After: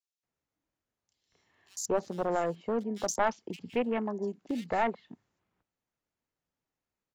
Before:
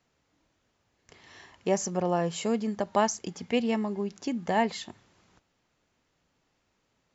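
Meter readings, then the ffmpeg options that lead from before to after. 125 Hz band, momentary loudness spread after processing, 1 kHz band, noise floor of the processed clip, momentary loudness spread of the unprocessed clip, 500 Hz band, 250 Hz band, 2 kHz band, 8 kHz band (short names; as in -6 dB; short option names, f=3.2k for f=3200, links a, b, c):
-7.5 dB, 8 LU, -2.5 dB, under -85 dBFS, 8 LU, -2.0 dB, -5.0 dB, -2.0 dB, n/a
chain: -filter_complex "[0:a]afwtdn=0.0126,acrossover=split=240|730|1700[a][b][c][d];[a]acompressor=threshold=-44dB:ratio=6[e];[e][b][c][d]amix=inputs=4:normalize=0,aeval=exprs='clip(val(0),-1,0.0631)':c=same,acrossover=split=3400[f][g];[f]adelay=230[h];[h][g]amix=inputs=2:normalize=0"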